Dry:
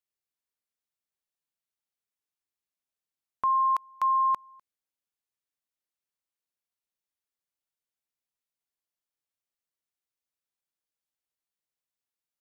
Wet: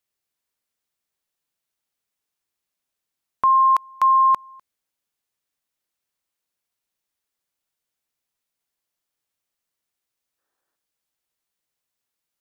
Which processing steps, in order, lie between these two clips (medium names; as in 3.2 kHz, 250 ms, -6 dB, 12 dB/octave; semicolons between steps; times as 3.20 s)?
time-frequency box 10.38–10.76 s, 270–1900 Hz +10 dB; trim +8.5 dB